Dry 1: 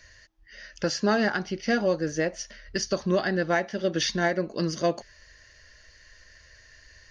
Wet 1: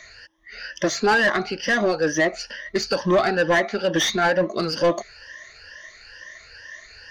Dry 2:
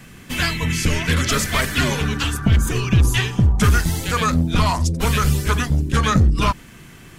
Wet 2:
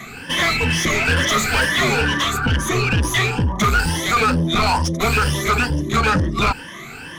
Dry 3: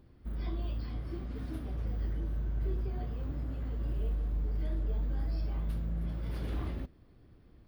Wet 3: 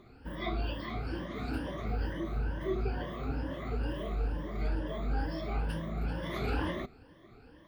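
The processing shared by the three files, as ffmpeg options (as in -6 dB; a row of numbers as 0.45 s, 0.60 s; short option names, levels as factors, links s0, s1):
-filter_complex "[0:a]afftfilt=real='re*pow(10,16/40*sin(2*PI*(1.2*log(max(b,1)*sr/1024/100)/log(2)-(2.2)*(pts-256)/sr)))':imag='im*pow(10,16/40*sin(2*PI*(1.2*log(max(b,1)*sr/1024/100)/log(2)-(2.2)*(pts-256)/sr)))':win_size=1024:overlap=0.75,asoftclip=type=tanh:threshold=0.335,asplit=2[s0][s1];[s1]highpass=f=720:p=1,volume=7.08,asoftclip=type=tanh:threshold=0.335[s2];[s0][s2]amix=inputs=2:normalize=0,lowpass=f=2700:p=1,volume=0.501"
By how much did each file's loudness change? +5.5 LU, +1.0 LU, +1.0 LU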